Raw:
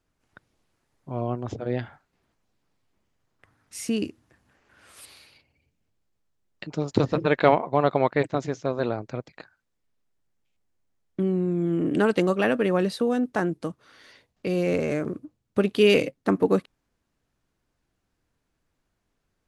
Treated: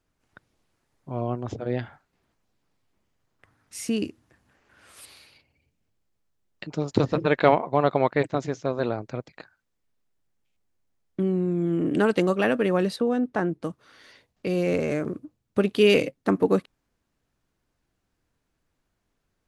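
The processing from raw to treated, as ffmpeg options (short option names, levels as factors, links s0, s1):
-filter_complex "[0:a]asettb=1/sr,asplit=3[s0][s1][s2];[s0]atrim=end=12.964[s3];[s1]atrim=start=12.96:end=13.64,asetpts=PTS-STARTPTS,afade=t=in:d=0.004:c=qsin,afade=t=out:st=0.676:d=0.004:c=qsin,lowpass=f=2500:p=1[s4];[s2]atrim=start=13.636[s5];[s3][s4]acrossfade=d=0.004:c1=hsin:c2=qsin[s6];[s6][s5]acrossfade=d=0.004:c1=qsin:c2=hsin"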